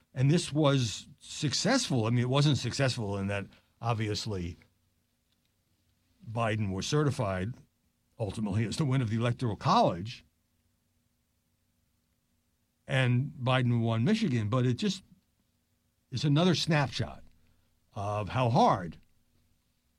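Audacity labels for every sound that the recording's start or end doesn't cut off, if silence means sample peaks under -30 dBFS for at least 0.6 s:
6.360000	7.490000	sound
8.210000	10.030000	sound
12.900000	14.940000	sound
16.140000	17.050000	sound
17.970000	18.830000	sound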